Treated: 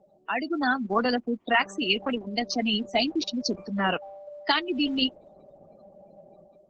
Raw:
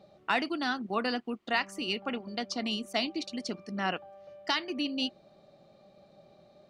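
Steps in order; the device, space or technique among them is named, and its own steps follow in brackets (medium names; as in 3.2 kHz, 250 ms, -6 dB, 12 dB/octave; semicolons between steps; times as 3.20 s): noise-suppressed video call (high-pass 150 Hz 12 dB/octave; spectral gate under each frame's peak -15 dB strong; level rider gain up to 10 dB; trim -2 dB; Opus 12 kbps 48 kHz)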